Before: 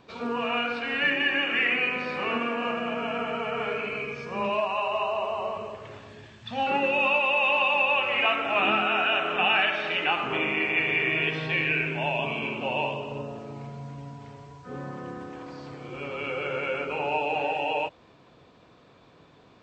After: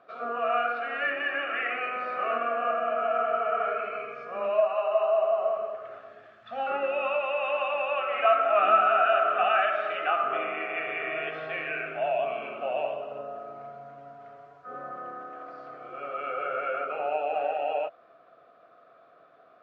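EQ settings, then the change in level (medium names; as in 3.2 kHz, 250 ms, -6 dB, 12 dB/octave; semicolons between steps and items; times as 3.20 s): two resonant band-passes 930 Hz, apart 0.9 oct; +8.5 dB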